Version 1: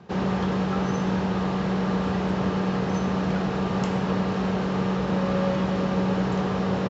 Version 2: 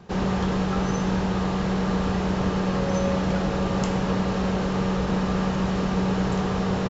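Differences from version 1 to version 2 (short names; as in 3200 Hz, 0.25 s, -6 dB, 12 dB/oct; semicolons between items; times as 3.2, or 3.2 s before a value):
first sound: remove air absorption 85 m; second sound: entry -2.40 s; master: remove HPF 96 Hz 12 dB/oct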